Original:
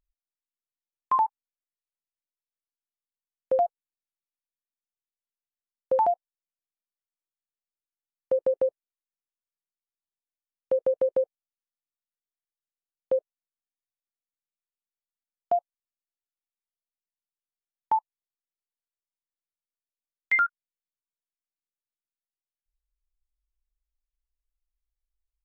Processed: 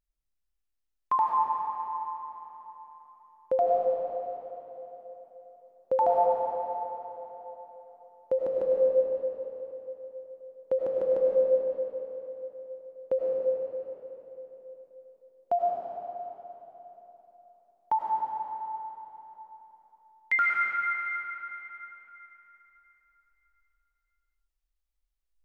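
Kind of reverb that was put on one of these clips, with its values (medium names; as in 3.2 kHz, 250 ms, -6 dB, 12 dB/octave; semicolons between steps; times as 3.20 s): algorithmic reverb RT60 3.8 s, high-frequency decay 0.8×, pre-delay 60 ms, DRR -3.5 dB; trim -2.5 dB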